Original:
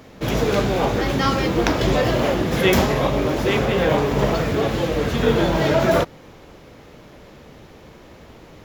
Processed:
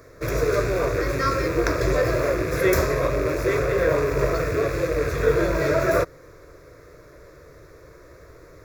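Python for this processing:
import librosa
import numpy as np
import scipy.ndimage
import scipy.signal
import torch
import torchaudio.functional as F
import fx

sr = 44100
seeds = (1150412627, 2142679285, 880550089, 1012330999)

y = fx.rattle_buzz(x, sr, strikes_db=-28.0, level_db=-18.0)
y = fx.fixed_phaser(y, sr, hz=820.0, stages=6)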